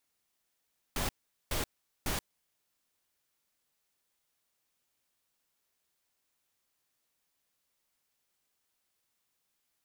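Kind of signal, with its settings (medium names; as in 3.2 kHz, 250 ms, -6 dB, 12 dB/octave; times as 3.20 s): noise bursts pink, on 0.13 s, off 0.42 s, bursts 3, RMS -32.5 dBFS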